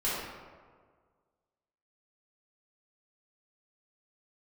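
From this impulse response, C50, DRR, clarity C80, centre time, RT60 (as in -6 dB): -2.0 dB, -10.5 dB, 1.0 dB, 100 ms, 1.7 s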